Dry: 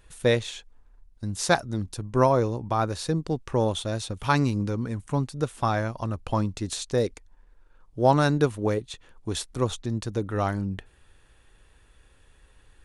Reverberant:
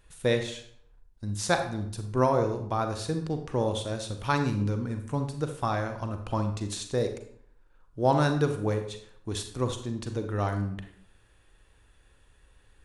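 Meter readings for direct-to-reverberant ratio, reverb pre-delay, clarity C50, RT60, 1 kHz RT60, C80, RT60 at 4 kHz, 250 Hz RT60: 6.0 dB, 34 ms, 8.0 dB, 0.60 s, 0.60 s, 11.5 dB, 0.45 s, 0.65 s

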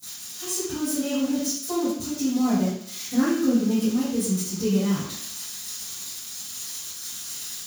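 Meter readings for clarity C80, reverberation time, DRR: 4.5 dB, 0.70 s, -19.0 dB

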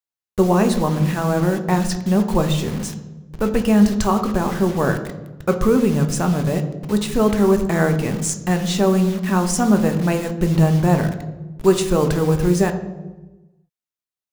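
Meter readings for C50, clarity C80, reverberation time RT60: 10.5 dB, 12.5 dB, 1.2 s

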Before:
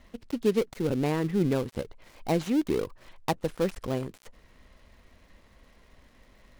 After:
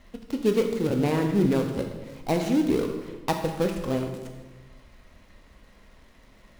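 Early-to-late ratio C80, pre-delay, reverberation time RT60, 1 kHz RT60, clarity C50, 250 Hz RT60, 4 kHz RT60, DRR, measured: 7.5 dB, 12 ms, 1.2 s, 1.1 s, 6.0 dB, 1.5 s, 0.95 s, 3.0 dB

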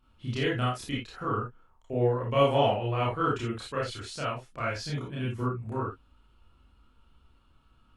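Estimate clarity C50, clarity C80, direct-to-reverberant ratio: 3.0 dB, 11.5 dB, -6.5 dB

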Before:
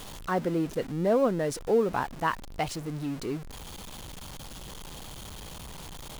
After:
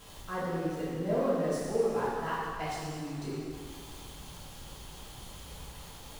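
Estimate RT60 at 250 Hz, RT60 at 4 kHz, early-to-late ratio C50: 1.8 s, 2.0 s, -2.5 dB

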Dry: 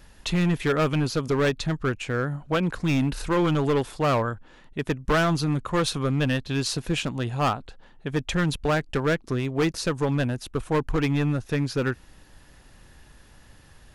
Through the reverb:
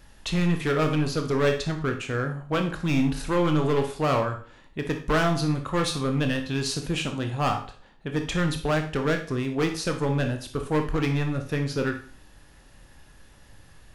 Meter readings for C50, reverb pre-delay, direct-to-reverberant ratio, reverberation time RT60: 9.0 dB, 19 ms, 4.5 dB, 0.40 s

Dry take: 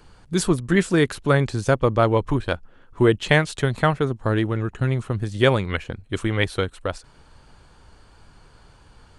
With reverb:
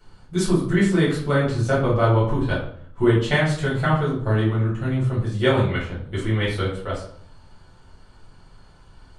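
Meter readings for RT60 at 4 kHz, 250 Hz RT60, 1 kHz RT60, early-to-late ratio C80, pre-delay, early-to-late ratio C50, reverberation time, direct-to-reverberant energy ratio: 0.45 s, 0.75 s, 0.55 s, 9.0 dB, 5 ms, 4.5 dB, 0.60 s, -7.5 dB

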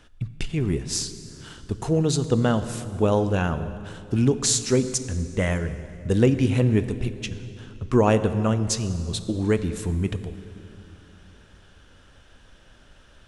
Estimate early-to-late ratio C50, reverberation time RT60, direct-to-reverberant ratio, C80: 12.0 dB, 2.8 s, 11.0 dB, 12.5 dB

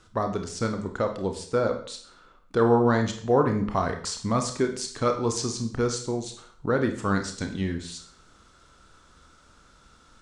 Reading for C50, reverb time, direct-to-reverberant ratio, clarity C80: 9.0 dB, 0.50 s, 4.5 dB, 13.0 dB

